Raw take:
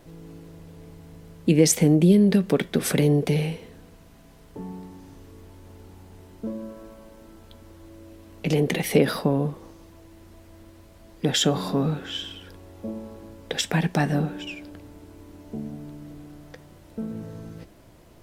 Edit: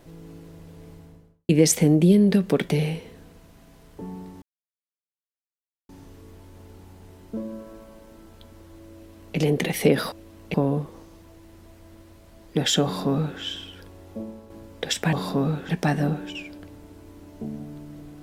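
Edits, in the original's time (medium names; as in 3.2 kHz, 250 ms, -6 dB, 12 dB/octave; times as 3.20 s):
0.91–1.49 s: studio fade out
2.69–3.26 s: delete
4.99 s: insert silence 1.47 s
8.05–8.47 s: copy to 9.22 s
11.52–12.08 s: copy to 13.81 s
12.78–13.18 s: fade out, to -6.5 dB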